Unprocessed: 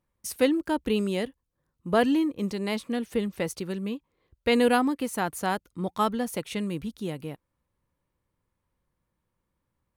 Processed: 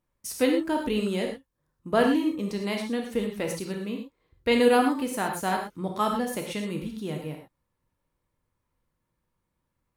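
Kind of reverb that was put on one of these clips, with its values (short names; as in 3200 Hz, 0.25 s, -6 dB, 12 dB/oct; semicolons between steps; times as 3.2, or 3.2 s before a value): non-linear reverb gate 0.14 s flat, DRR 1.5 dB; gain -1.5 dB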